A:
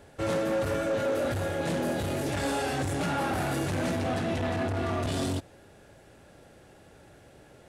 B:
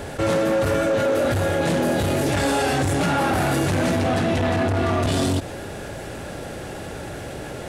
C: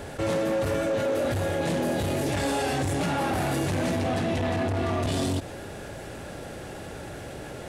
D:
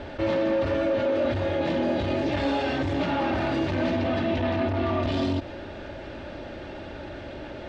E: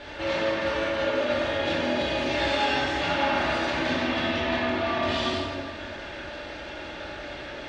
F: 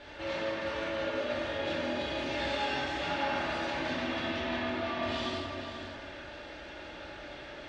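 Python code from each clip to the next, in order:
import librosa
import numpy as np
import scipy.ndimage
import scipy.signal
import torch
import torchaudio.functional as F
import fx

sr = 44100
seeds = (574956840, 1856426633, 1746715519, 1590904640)

y1 = fx.env_flatten(x, sr, amount_pct=50)
y1 = y1 * librosa.db_to_amplitude(7.0)
y2 = fx.dynamic_eq(y1, sr, hz=1400.0, q=4.2, threshold_db=-40.0, ratio=4.0, max_db=-4)
y2 = y2 * librosa.db_to_amplitude(-5.5)
y3 = scipy.signal.sosfilt(scipy.signal.butter(4, 4300.0, 'lowpass', fs=sr, output='sos'), y2)
y3 = y3 + 0.5 * np.pad(y3, (int(3.3 * sr / 1000.0), 0))[:len(y3)]
y4 = fx.tilt_shelf(y3, sr, db=-7.5, hz=920.0)
y4 = fx.rev_plate(y4, sr, seeds[0], rt60_s=1.7, hf_ratio=0.55, predelay_ms=0, drr_db=-6.0)
y4 = y4 * librosa.db_to_amplitude(-4.5)
y5 = y4 + 10.0 ** (-9.5 / 20.0) * np.pad(y4, (int(489 * sr / 1000.0), 0))[:len(y4)]
y5 = y5 * librosa.db_to_amplitude(-8.0)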